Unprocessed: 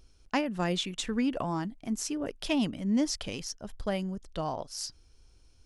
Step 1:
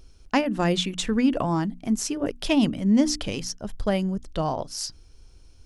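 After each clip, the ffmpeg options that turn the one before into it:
-af "lowshelf=f=430:g=4,bandreject=f=60:t=h:w=6,bandreject=f=120:t=h:w=6,bandreject=f=180:t=h:w=6,bandreject=f=240:t=h:w=6,bandreject=f=300:t=h:w=6,volume=5.5dB"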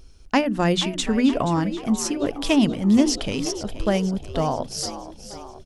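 -filter_complex "[0:a]asplit=7[a][b][c][d][e][f][g];[b]adelay=478,afreqshift=63,volume=-13dB[h];[c]adelay=956,afreqshift=126,volume=-17.9dB[i];[d]adelay=1434,afreqshift=189,volume=-22.8dB[j];[e]adelay=1912,afreqshift=252,volume=-27.6dB[k];[f]adelay=2390,afreqshift=315,volume=-32.5dB[l];[g]adelay=2868,afreqshift=378,volume=-37.4dB[m];[a][h][i][j][k][l][m]amix=inputs=7:normalize=0,volume=2.5dB"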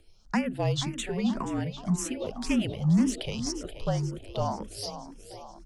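-filter_complex "[0:a]asoftclip=type=tanh:threshold=-11dB,afreqshift=-43,asplit=2[a][b];[b]afreqshift=1.9[c];[a][c]amix=inputs=2:normalize=1,volume=-3.5dB"

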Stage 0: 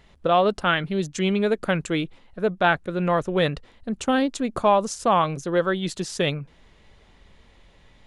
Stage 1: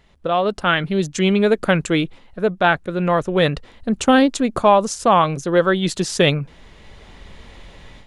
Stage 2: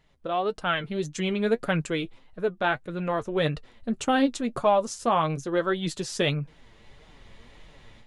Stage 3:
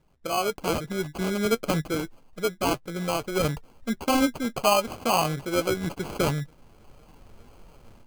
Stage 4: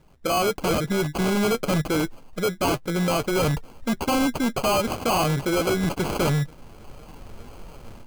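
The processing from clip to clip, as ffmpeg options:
-af "dynaudnorm=f=420:g=3:m=14dB,volume=-1dB"
-af "flanger=delay=6.3:depth=2.7:regen=41:speed=1.7:shape=sinusoidal,volume=-5dB"
-af "acrusher=samples=24:mix=1:aa=0.000001"
-af "volume=28.5dB,asoftclip=hard,volume=-28.5dB,volume=9dB"

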